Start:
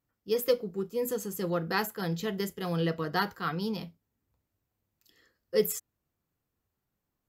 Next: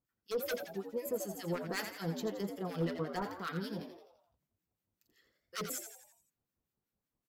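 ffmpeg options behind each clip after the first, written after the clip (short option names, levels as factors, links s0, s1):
-filter_complex "[0:a]aeval=exprs='0.0708*(abs(mod(val(0)/0.0708+3,4)-2)-1)':c=same,acrossover=split=1200[s0][s1];[s0]aeval=exprs='val(0)*(1-1/2+1/2*cos(2*PI*5.3*n/s))':c=same[s2];[s1]aeval=exprs='val(0)*(1-1/2-1/2*cos(2*PI*5.3*n/s))':c=same[s3];[s2][s3]amix=inputs=2:normalize=0,asplit=2[s4][s5];[s5]asplit=6[s6][s7][s8][s9][s10][s11];[s6]adelay=85,afreqshift=84,volume=0.398[s12];[s7]adelay=170,afreqshift=168,volume=0.2[s13];[s8]adelay=255,afreqshift=252,volume=0.1[s14];[s9]adelay=340,afreqshift=336,volume=0.0495[s15];[s10]adelay=425,afreqshift=420,volume=0.0248[s16];[s11]adelay=510,afreqshift=504,volume=0.0124[s17];[s12][s13][s14][s15][s16][s17]amix=inputs=6:normalize=0[s18];[s4][s18]amix=inputs=2:normalize=0,volume=0.75"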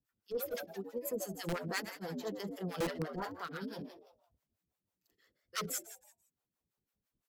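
-filter_complex "[0:a]acrossover=split=470[s0][s1];[s0]aeval=exprs='val(0)*(1-1/2+1/2*cos(2*PI*6*n/s))':c=same[s2];[s1]aeval=exprs='val(0)*(1-1/2-1/2*cos(2*PI*6*n/s))':c=same[s3];[s2][s3]amix=inputs=2:normalize=0,acrossover=split=250[s4][s5];[s4]aeval=exprs='(mod(66.8*val(0)+1,2)-1)/66.8':c=same[s6];[s6][s5]amix=inputs=2:normalize=0,volume=1.58"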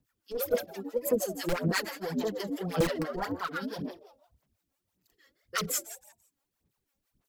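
-af "aphaser=in_gain=1:out_gain=1:delay=3.7:decay=0.64:speed=1.8:type=sinusoidal,volume=1.78"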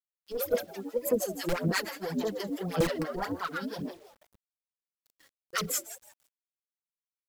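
-af "acrusher=bits=9:mix=0:aa=0.000001"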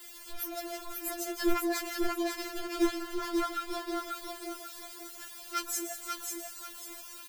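-af "aeval=exprs='val(0)+0.5*0.0266*sgn(val(0))':c=same,aecho=1:1:541|1082|1623|2164:0.631|0.208|0.0687|0.0227,afftfilt=real='re*4*eq(mod(b,16),0)':imag='im*4*eq(mod(b,16),0)':win_size=2048:overlap=0.75,volume=0.75"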